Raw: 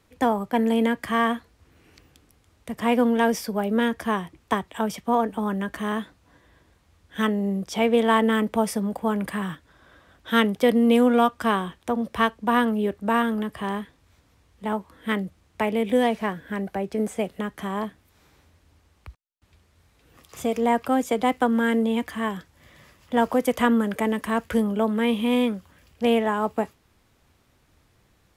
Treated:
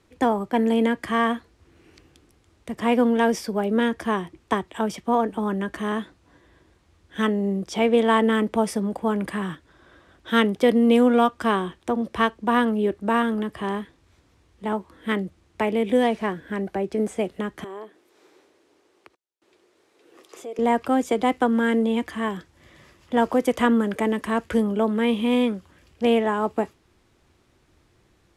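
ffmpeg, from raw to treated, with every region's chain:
-filter_complex "[0:a]asettb=1/sr,asplit=3[s0][s1][s2];[s0]atrim=end=17.644[s3];[s1]atrim=start=17.64:end=20.59,asetpts=PTS-STARTPTS,afade=t=in:d=0.004:c=qsin,afade=t=out:st=2.946:d=0.004:c=qsin,acompressor=threshold=0.00708:ratio=2.5:attack=3.2:release=140:knee=1:detection=peak,highpass=f=390:t=q:w=2.2[s4];[s2]atrim=start=20.586[s5];[s3][s4]acrossfade=d=0.004:c1=hsin:c2=qsin[s6];[s6][s5]acrossfade=d=0.004:c1=qsin:c2=hsin,lowpass=9900,equalizer=f=350:w=3.9:g=8"

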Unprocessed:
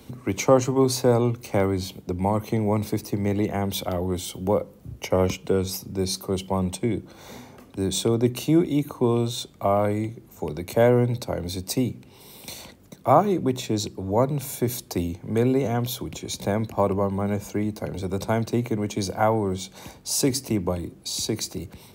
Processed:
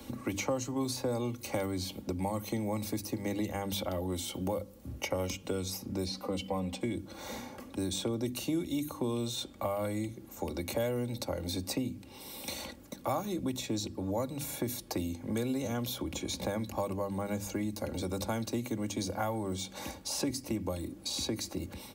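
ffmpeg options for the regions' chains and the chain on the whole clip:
-filter_complex "[0:a]asettb=1/sr,asplit=3[s0][s1][s2];[s0]atrim=end=6.064[s3];[s1]atrim=start=6.06:end=6.81,asetpts=PTS-STARTPTS,afade=t=in:d=0.004:c=qsin,afade=t=out:st=0.746:d=0.004:c=qsin,acrossover=split=6000[s4][s5];[s5]acompressor=threshold=0.00708:ratio=4:attack=1:release=60[s6];[s4][s6]amix=inputs=2:normalize=0,bass=f=250:g=-2,treble=f=4000:g=-9,aecho=1:1:4:0.88,atrim=end_sample=33075[s7];[s2]atrim=start=6.806[s8];[s3][s7]acrossfade=d=0.004:c1=hsin:c2=qsin[s9];[s9][s8]acrossfade=d=0.004:c1=qsin:c2=hsin,bandreject=f=50:t=h:w=6,bandreject=f=100:t=h:w=6,bandreject=f=150:t=h:w=6,bandreject=f=200:t=h:w=6,bandreject=f=250:t=h:w=6,bandreject=f=300:t=h:w=6,aecho=1:1:3.6:0.55,acrossover=split=120|3300[s10][s11][s12];[s10]acompressor=threshold=0.00794:ratio=4[s13];[s11]acompressor=threshold=0.02:ratio=4[s14];[s12]acompressor=threshold=0.01:ratio=4[s15];[s13][s14][s15]amix=inputs=3:normalize=0"

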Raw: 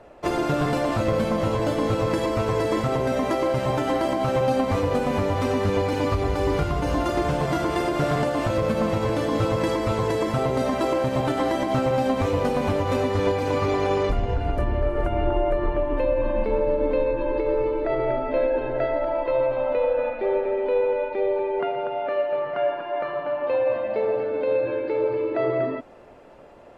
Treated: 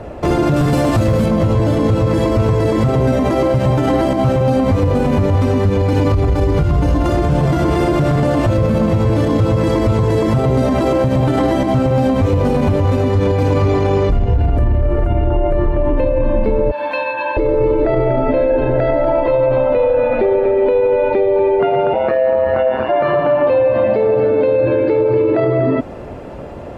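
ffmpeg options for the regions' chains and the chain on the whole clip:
-filter_complex "[0:a]asettb=1/sr,asplit=3[s0][s1][s2];[s0]atrim=end=0.564[s3];[s1]atrim=start=0.56:end=1.26,asetpts=PTS-STARTPTS,afade=t=in:d=0.004:c=qsin,afade=t=out:st=0.696:d=0.004:c=qsin,highshelf=f=5200:g=9.5,asoftclip=type=hard:threshold=0.133[s4];[s2]atrim=start=1.256[s5];[s3][s4]acrossfade=d=0.004:c1=hsin:c2=qsin[s6];[s6][s5]acrossfade=d=0.004:c1=qsin:c2=hsin,asettb=1/sr,asplit=3[s7][s8][s9];[s7]atrim=end=16.714[s10];[s8]atrim=start=16.71:end=17.37,asetpts=PTS-STARTPTS,afade=t=in:d=0.004:c=qsin,afade=t=out:st=0.656:d=0.004:c=qsin,highpass=1200,aecho=1:1:1.2:0.96,atrim=end_sample=29106[s11];[s9]atrim=start=17.366[s12];[s10][s11]acrossfade=d=0.004:c1=hsin:c2=qsin[s13];[s13][s12]acrossfade=d=0.004:c1=qsin:c2=hsin,asettb=1/sr,asplit=3[s14][s15][s16];[s14]atrim=end=21.934[s17];[s15]atrim=start=21.93:end=22.89,asetpts=PTS-STARTPTS,afade=t=in:d=0.004:c=qsin,afade=t=out:st=0.956:d=0.004:c=qsin,bandreject=f=3100:w=5.6,aeval=exprs='val(0)*sin(2*PI*66*n/s)':c=same,asplit=2[s18][s19];[s19]adelay=23,volume=0.708[s20];[s18][s20]amix=inputs=2:normalize=0,atrim=end_sample=42336[s21];[s16]atrim=start=22.886[s22];[s17][s21]acrossfade=d=0.004:c1=hsin:c2=qsin[s23];[s23][s22]acrossfade=d=0.004:c1=qsin:c2=hsin,equalizer=f=81:w=0.3:g=13.5,acompressor=threshold=0.126:ratio=4,alimiter=level_in=8.91:limit=0.891:release=50:level=0:latency=1,volume=0.501"

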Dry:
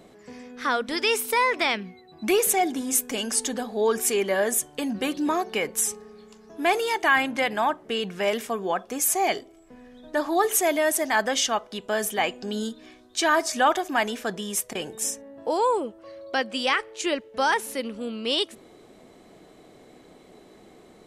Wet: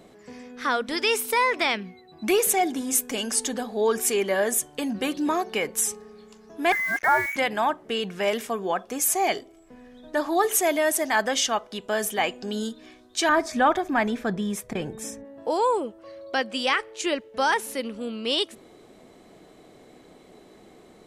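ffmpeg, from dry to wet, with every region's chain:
-filter_complex "[0:a]asettb=1/sr,asplit=3[s0][s1][s2];[s0]atrim=end=6.724[s3];[s1]atrim=start=6.72:end=7.36,asetpts=PTS-STARTPTS,afade=t=in:d=0.004:c=qsin,afade=t=out:st=0.636:d=0.004:c=qsin,highpass=42,lowpass=f=2100:t=q:w=0.5098,lowpass=f=2100:t=q:w=0.6013,lowpass=f=2100:t=q:w=0.9,lowpass=f=2100:t=q:w=2.563,afreqshift=-2500,acrusher=bits=5:mix=0:aa=0.5[s4];[s2]atrim=start=7.356[s5];[s3][s4]acrossfade=d=0.004:c1=hsin:c2=qsin[s6];[s6][s5]acrossfade=d=0.004:c1=qsin:c2=hsin,asettb=1/sr,asplit=3[s7][s8][s9];[s7]atrim=end=13.294[s10];[s8]atrim=start=13.29:end=15.25,asetpts=PTS-STARTPTS,afade=t=in:d=0.004:c=qsin,afade=t=out:st=1.956:d=0.004:c=qsin,bass=f=250:g=11,treble=f=4000:g=-10,bandreject=f=2900:w=8.9[s11];[s9]atrim=start=15.246[s12];[s10][s11]acrossfade=d=0.004:c1=hsin:c2=qsin[s13];[s13][s12]acrossfade=d=0.004:c1=qsin:c2=hsin"

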